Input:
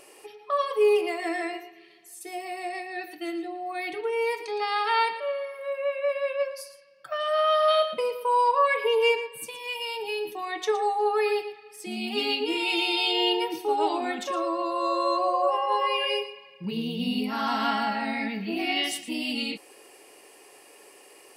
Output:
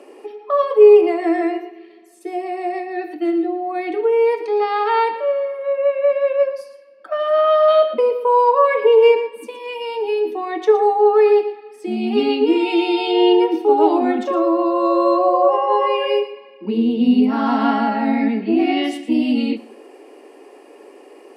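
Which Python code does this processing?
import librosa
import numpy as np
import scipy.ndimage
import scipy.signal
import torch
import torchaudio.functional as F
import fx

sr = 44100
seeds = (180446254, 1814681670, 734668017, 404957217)

y = scipy.signal.sosfilt(scipy.signal.butter(12, 230.0, 'highpass', fs=sr, output='sos'), x)
y = fx.tilt_eq(y, sr, slope=-5.0)
y = fx.echo_feedback(y, sr, ms=70, feedback_pct=48, wet_db=-19.0)
y = y * 10.0 ** (6.5 / 20.0)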